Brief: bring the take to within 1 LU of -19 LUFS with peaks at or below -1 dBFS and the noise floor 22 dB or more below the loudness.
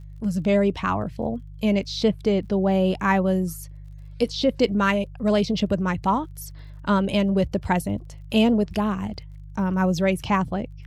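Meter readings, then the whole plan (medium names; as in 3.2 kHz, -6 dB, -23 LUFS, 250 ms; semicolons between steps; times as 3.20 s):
tick rate 44 per s; hum 50 Hz; highest harmonic 150 Hz; hum level -38 dBFS; loudness -23.5 LUFS; peak level -7.0 dBFS; loudness target -19.0 LUFS
-> de-click; de-hum 50 Hz, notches 3; trim +4.5 dB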